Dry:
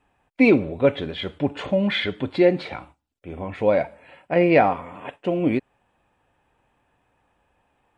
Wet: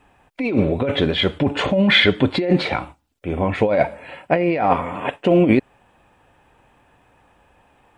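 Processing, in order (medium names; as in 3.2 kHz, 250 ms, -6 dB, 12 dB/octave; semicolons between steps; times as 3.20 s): compressor with a negative ratio -23 dBFS, ratio -1; trim +7 dB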